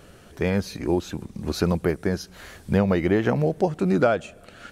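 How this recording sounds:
background noise floor −50 dBFS
spectral slope −5.5 dB per octave

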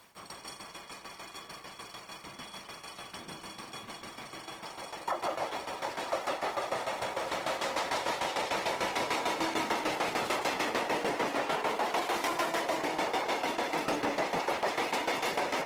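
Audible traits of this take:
a quantiser's noise floor 10 bits, dither none
tremolo saw down 6.7 Hz, depth 75%
Opus

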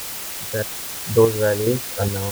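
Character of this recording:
chopped level 1.2 Hz, depth 60%, duty 50%
a quantiser's noise floor 6 bits, dither triangular

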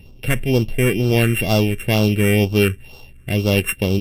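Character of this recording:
a buzz of ramps at a fixed pitch in blocks of 16 samples
phaser sweep stages 4, 2.1 Hz, lowest notch 800–1,800 Hz
Ogg Vorbis

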